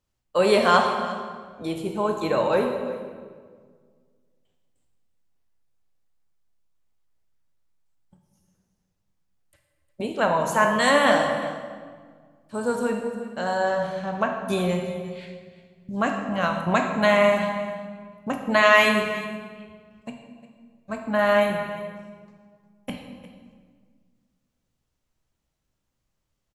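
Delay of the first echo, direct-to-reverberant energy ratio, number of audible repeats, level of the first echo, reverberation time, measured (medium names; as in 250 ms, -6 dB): 355 ms, 2.5 dB, 1, -16.0 dB, 1.7 s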